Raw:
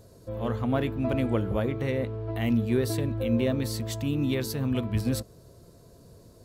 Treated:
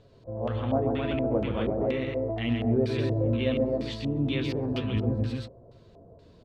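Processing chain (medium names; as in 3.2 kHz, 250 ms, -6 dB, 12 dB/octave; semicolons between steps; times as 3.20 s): flange 0.37 Hz, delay 6.8 ms, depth 8 ms, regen +49%; multi-tap echo 130/201/258 ms -5/-11/-3.5 dB; LFO low-pass square 2.1 Hz 700–3200 Hz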